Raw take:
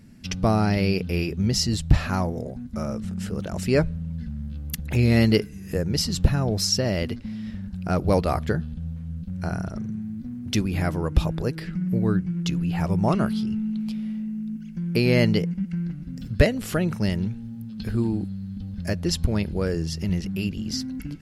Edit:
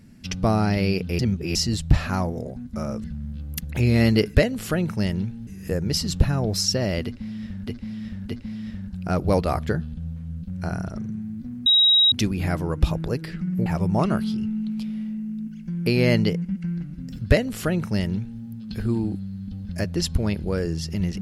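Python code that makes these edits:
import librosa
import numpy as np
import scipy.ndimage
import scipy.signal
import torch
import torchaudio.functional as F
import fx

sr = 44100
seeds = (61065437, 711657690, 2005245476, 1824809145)

y = fx.edit(x, sr, fx.reverse_span(start_s=1.19, length_s=0.36),
    fx.cut(start_s=3.04, length_s=1.16),
    fx.repeat(start_s=7.09, length_s=0.62, count=3),
    fx.insert_tone(at_s=10.46, length_s=0.46, hz=3820.0, db=-13.0),
    fx.cut(start_s=12.0, length_s=0.75),
    fx.duplicate(start_s=16.38, length_s=1.12, to_s=5.51), tone=tone)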